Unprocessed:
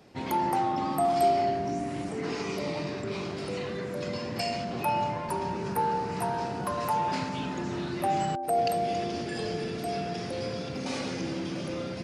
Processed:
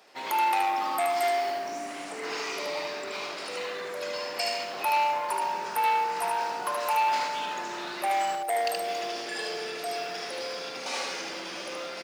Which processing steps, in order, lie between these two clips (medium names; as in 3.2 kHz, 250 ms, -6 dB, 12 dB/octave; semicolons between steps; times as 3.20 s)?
high-pass 730 Hz 12 dB/octave; in parallel at -4.5 dB: short-mantissa float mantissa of 2-bit; on the sum: delay 75 ms -4 dB; transformer saturation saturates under 2 kHz